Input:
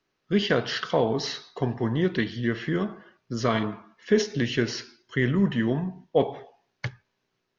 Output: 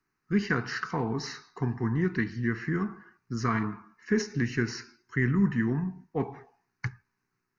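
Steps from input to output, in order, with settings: static phaser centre 1.4 kHz, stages 4

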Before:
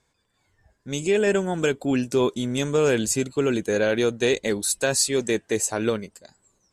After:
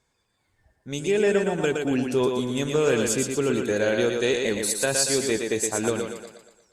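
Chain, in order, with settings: thinning echo 117 ms, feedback 49%, high-pass 190 Hz, level -4 dB; trim -2 dB; Opus 48 kbps 48 kHz

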